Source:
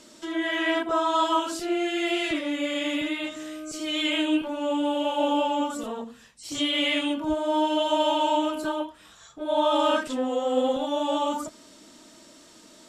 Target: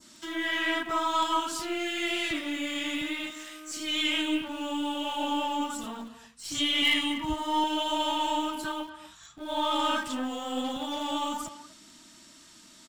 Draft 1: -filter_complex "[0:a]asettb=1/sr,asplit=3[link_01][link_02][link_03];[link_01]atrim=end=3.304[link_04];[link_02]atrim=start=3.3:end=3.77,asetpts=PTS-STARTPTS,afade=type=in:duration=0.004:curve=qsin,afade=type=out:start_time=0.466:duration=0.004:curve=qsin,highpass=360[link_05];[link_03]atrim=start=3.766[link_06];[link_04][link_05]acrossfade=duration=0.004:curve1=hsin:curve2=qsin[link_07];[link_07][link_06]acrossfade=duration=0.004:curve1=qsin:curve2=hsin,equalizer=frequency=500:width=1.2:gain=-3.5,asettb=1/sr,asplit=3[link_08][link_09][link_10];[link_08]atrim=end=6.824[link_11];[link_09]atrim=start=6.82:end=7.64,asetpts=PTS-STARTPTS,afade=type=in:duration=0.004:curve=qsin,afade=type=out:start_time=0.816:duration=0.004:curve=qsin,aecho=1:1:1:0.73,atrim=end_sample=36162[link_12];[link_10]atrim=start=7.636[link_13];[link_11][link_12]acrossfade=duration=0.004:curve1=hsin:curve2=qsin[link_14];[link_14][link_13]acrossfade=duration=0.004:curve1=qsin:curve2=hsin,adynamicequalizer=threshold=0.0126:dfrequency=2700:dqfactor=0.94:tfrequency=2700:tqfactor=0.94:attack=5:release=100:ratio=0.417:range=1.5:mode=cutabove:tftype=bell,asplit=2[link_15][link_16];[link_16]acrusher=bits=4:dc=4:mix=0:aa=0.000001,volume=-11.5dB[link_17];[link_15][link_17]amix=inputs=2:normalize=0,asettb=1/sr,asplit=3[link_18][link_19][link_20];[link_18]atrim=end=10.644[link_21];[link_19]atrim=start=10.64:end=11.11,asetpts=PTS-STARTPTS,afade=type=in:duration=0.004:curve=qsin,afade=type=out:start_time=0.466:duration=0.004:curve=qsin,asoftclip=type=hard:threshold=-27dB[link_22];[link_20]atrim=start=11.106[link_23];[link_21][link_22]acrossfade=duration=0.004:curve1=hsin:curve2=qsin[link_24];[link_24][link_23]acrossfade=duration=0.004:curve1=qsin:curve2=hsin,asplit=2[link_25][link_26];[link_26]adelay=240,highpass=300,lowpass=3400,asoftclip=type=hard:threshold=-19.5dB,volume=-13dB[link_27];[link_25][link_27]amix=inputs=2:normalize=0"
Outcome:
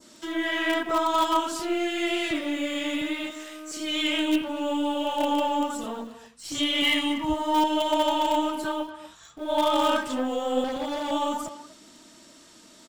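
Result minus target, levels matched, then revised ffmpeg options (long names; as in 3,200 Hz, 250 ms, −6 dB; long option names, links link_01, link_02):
500 Hz band +5.5 dB
-filter_complex "[0:a]asettb=1/sr,asplit=3[link_01][link_02][link_03];[link_01]atrim=end=3.304[link_04];[link_02]atrim=start=3.3:end=3.77,asetpts=PTS-STARTPTS,afade=type=in:duration=0.004:curve=qsin,afade=type=out:start_time=0.466:duration=0.004:curve=qsin,highpass=360[link_05];[link_03]atrim=start=3.766[link_06];[link_04][link_05]acrossfade=duration=0.004:curve1=hsin:curve2=qsin[link_07];[link_07][link_06]acrossfade=duration=0.004:curve1=qsin:curve2=hsin,equalizer=frequency=500:width=1.2:gain=-15,asettb=1/sr,asplit=3[link_08][link_09][link_10];[link_08]atrim=end=6.824[link_11];[link_09]atrim=start=6.82:end=7.64,asetpts=PTS-STARTPTS,afade=type=in:duration=0.004:curve=qsin,afade=type=out:start_time=0.816:duration=0.004:curve=qsin,aecho=1:1:1:0.73,atrim=end_sample=36162[link_12];[link_10]atrim=start=7.636[link_13];[link_11][link_12]acrossfade=duration=0.004:curve1=hsin:curve2=qsin[link_14];[link_14][link_13]acrossfade=duration=0.004:curve1=qsin:curve2=hsin,adynamicequalizer=threshold=0.0126:dfrequency=2700:dqfactor=0.94:tfrequency=2700:tqfactor=0.94:attack=5:release=100:ratio=0.417:range=1.5:mode=cutabove:tftype=bell,asplit=2[link_15][link_16];[link_16]acrusher=bits=4:dc=4:mix=0:aa=0.000001,volume=-11.5dB[link_17];[link_15][link_17]amix=inputs=2:normalize=0,asettb=1/sr,asplit=3[link_18][link_19][link_20];[link_18]atrim=end=10.644[link_21];[link_19]atrim=start=10.64:end=11.11,asetpts=PTS-STARTPTS,afade=type=in:duration=0.004:curve=qsin,afade=type=out:start_time=0.466:duration=0.004:curve=qsin,asoftclip=type=hard:threshold=-27dB[link_22];[link_20]atrim=start=11.106[link_23];[link_21][link_22]acrossfade=duration=0.004:curve1=hsin:curve2=qsin[link_24];[link_24][link_23]acrossfade=duration=0.004:curve1=qsin:curve2=hsin,asplit=2[link_25][link_26];[link_26]adelay=240,highpass=300,lowpass=3400,asoftclip=type=hard:threshold=-19.5dB,volume=-13dB[link_27];[link_25][link_27]amix=inputs=2:normalize=0"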